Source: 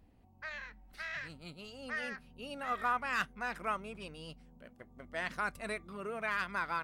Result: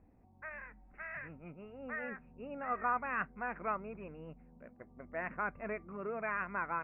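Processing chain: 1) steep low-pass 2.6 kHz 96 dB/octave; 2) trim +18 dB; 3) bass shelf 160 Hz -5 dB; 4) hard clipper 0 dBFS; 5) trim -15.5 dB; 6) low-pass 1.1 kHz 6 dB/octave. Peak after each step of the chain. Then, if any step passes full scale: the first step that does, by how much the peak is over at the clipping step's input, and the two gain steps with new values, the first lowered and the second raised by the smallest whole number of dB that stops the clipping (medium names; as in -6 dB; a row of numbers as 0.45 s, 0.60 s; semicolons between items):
-22.0 dBFS, -4.0 dBFS, -4.0 dBFS, -4.0 dBFS, -19.5 dBFS, -23.0 dBFS; nothing clips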